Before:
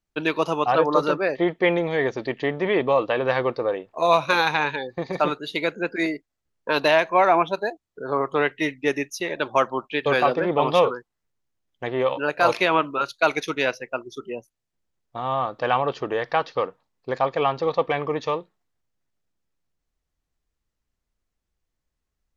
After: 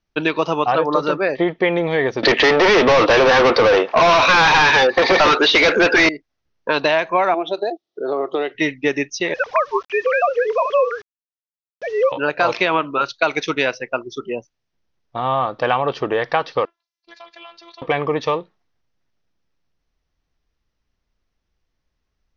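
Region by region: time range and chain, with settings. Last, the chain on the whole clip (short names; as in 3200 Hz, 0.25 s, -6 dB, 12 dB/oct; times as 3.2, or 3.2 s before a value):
2.23–6.09 HPF 280 Hz + overdrive pedal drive 37 dB, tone 4100 Hz, clips at -4.5 dBFS
7.34–8.55 compressor 2.5:1, threshold -25 dBFS + speaker cabinet 310–6700 Hz, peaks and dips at 350 Hz +10 dB, 690 Hz +6 dB, 990 Hz -9 dB, 1600 Hz -9 dB, 2300 Hz -7 dB, 3700 Hz +6 dB
9.34–12.12 sine-wave speech + requantised 8-bit, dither none
16.65–17.82 differentiator + robotiser 338 Hz + compressor 2:1, threshold -45 dBFS
whole clip: elliptic low-pass 5900 Hz, stop band 40 dB; compressor 3:1, threshold -22 dBFS; gain +7.5 dB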